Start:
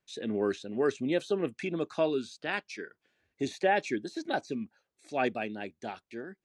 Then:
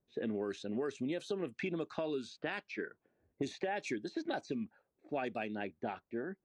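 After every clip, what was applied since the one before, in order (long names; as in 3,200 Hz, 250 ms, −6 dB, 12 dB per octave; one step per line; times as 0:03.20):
low-pass that shuts in the quiet parts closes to 590 Hz, open at −27 dBFS
brickwall limiter −20.5 dBFS, peak gain reduction 6.5 dB
downward compressor 6 to 1, threshold −39 dBFS, peak gain reduction 13.5 dB
level +4.5 dB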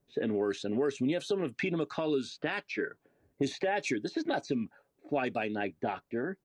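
comb filter 7.1 ms, depth 31%
in parallel at +2 dB: brickwall limiter −29.5 dBFS, peak gain reduction 7.5 dB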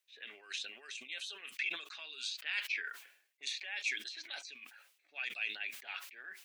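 reversed playback
downward compressor 5 to 1, threshold −41 dBFS, peak gain reduction 14.5 dB
reversed playback
high-pass with resonance 2,500 Hz, resonance Q 1.9
level that may fall only so fast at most 93 dB per second
level +7.5 dB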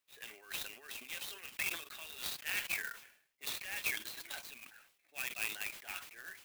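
converter with an unsteady clock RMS 0.04 ms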